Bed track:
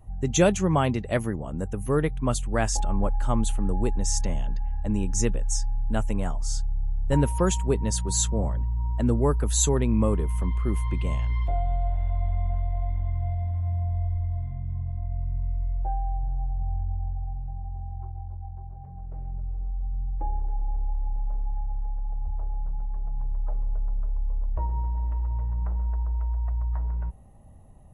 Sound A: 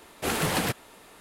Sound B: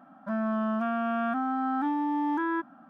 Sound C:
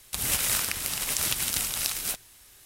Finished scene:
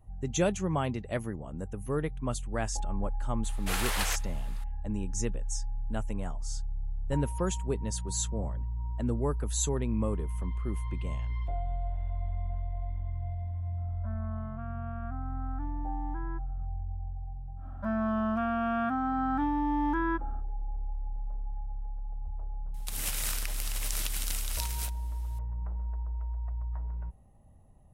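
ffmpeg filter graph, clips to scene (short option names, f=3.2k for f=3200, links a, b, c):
-filter_complex "[2:a]asplit=2[a][b];[0:a]volume=-7.5dB[c];[1:a]highpass=900[d];[a]lowpass=1.7k[e];[d]atrim=end=1.2,asetpts=PTS-STARTPTS,volume=-2.5dB,afade=t=in:d=0.004:c=hsin,afade=t=out:st=1.196:d=0.004:c=hsin,adelay=3440[f];[e]atrim=end=2.89,asetpts=PTS-STARTPTS,volume=-13.5dB,afade=t=in:d=0.004:c=hsin,afade=t=out:st=2.886:d=0.004:c=hsin,adelay=13770[g];[b]atrim=end=2.89,asetpts=PTS-STARTPTS,volume=-1dB,afade=t=in:d=0.1,afade=t=out:st=2.79:d=0.1,adelay=17560[h];[3:a]atrim=end=2.65,asetpts=PTS-STARTPTS,volume=-8dB,afade=t=in:d=0.004:c=hsin,afade=t=out:st=2.646:d=0.004:c=hsin,adelay=22740[i];[c][f][g][h][i]amix=inputs=5:normalize=0"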